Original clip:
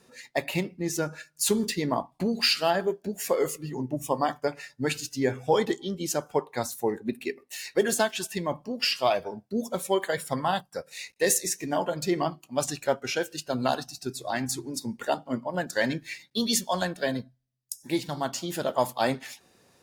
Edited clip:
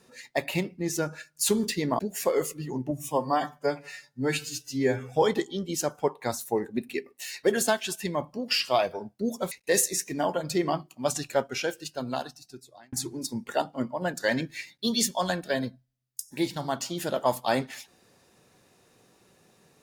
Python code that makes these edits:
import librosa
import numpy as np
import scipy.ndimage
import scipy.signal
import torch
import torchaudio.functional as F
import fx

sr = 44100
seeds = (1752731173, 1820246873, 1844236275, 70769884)

y = fx.edit(x, sr, fx.cut(start_s=1.99, length_s=1.04),
    fx.stretch_span(start_s=3.95, length_s=1.45, factor=1.5),
    fx.cut(start_s=9.83, length_s=1.21),
    fx.fade_out_span(start_s=12.98, length_s=1.47), tone=tone)